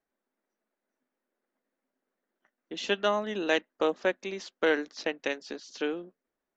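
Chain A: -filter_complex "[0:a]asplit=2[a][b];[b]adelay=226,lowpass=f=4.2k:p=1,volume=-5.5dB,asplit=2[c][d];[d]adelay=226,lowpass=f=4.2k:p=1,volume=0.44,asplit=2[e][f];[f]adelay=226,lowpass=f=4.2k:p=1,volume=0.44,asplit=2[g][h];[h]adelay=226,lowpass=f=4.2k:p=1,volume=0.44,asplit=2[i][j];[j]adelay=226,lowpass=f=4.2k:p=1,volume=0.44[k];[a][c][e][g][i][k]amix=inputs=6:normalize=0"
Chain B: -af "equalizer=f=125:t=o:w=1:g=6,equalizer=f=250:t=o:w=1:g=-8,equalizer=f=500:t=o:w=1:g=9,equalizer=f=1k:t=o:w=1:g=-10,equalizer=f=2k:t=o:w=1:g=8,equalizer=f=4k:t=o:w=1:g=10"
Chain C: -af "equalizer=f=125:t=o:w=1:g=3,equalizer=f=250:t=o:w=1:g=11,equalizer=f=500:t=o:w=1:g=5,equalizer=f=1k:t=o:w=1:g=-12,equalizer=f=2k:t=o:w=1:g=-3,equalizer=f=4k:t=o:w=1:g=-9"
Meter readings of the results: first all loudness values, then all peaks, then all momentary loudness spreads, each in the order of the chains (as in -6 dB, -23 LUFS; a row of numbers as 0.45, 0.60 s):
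-29.5, -25.5, -27.0 LUFS; -11.0, -6.5, -11.0 dBFS; 11, 9, 11 LU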